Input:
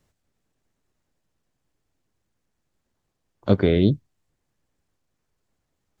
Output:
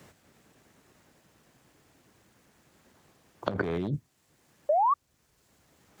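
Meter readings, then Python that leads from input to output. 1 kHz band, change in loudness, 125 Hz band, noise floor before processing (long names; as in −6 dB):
+15.0 dB, −9.0 dB, −12.0 dB, −77 dBFS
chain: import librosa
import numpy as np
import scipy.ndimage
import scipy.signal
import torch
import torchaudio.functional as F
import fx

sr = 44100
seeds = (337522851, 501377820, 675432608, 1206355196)

y = np.minimum(x, 2.0 * 10.0 ** (-13.0 / 20.0) - x)
y = scipy.signal.sosfilt(scipy.signal.butter(2, 51.0, 'highpass', fs=sr, output='sos'), y)
y = fx.dynamic_eq(y, sr, hz=3900.0, q=1.2, threshold_db=-47.0, ratio=4.0, max_db=-7)
y = fx.spec_paint(y, sr, seeds[0], shape='rise', start_s=4.69, length_s=0.25, low_hz=570.0, high_hz=1200.0, level_db=-26.0)
y = fx.over_compress(y, sr, threshold_db=-27.0, ratio=-1.0)
y = fx.high_shelf(y, sr, hz=2700.0, db=9.0)
y = fx.band_squash(y, sr, depth_pct=40)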